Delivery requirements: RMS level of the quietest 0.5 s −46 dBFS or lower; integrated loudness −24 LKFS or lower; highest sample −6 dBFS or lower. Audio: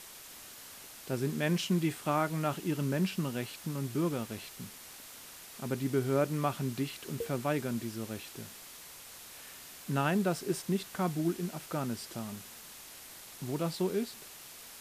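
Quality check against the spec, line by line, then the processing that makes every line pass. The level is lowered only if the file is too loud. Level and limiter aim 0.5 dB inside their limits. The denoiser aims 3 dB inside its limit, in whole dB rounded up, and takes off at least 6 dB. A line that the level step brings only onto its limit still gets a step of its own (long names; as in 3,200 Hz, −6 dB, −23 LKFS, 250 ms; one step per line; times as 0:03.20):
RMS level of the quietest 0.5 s −50 dBFS: in spec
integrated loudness −34.0 LKFS: in spec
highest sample −17.5 dBFS: in spec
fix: no processing needed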